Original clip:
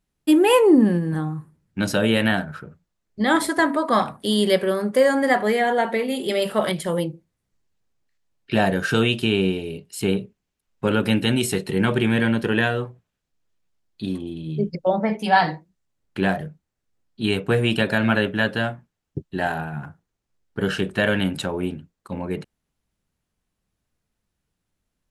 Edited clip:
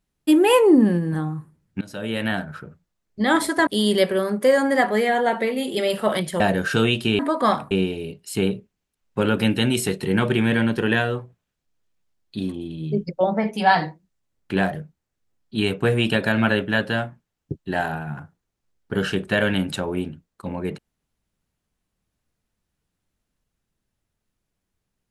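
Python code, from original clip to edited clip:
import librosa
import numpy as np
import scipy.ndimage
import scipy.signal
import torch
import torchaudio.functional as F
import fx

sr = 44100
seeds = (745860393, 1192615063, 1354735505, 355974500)

y = fx.edit(x, sr, fx.fade_in_from(start_s=1.81, length_s=0.81, floor_db=-22.5),
    fx.move(start_s=3.67, length_s=0.52, to_s=9.37),
    fx.cut(start_s=6.92, length_s=1.66), tone=tone)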